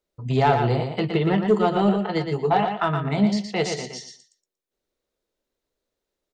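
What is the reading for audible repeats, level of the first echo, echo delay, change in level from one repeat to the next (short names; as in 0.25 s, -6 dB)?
3, -6.0 dB, 0.117 s, -14.0 dB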